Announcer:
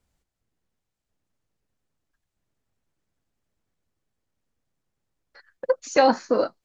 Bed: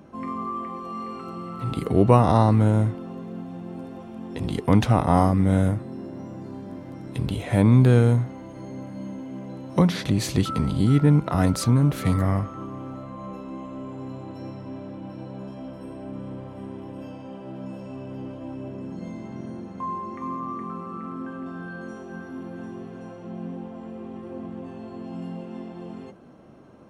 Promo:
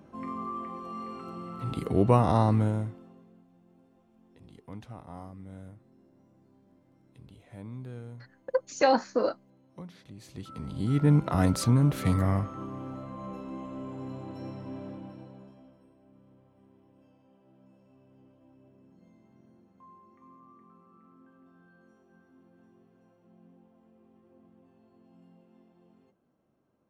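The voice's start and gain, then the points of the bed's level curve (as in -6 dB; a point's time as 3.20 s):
2.85 s, -5.0 dB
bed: 2.57 s -5.5 dB
3.47 s -25.5 dB
10.15 s -25.5 dB
11.12 s -3.5 dB
14.90 s -3.5 dB
15.95 s -24 dB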